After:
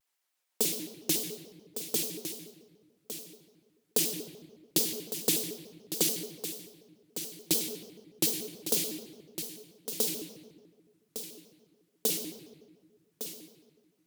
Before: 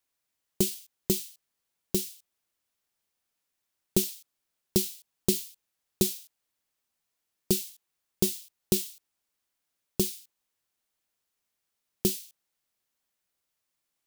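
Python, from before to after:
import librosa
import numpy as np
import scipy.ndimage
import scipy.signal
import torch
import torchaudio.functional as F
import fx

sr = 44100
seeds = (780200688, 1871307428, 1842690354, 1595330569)

p1 = scipy.signal.sosfilt(scipy.signal.butter(2, 460.0, 'highpass', fs=sr, output='sos'), x)
p2 = p1 + fx.echo_single(p1, sr, ms=1157, db=-10.0, dry=0)
p3 = fx.room_shoebox(p2, sr, seeds[0], volume_m3=1200.0, walls='mixed', distance_m=1.5)
y = fx.vibrato_shape(p3, sr, shape='square', rate_hz=6.9, depth_cents=250.0)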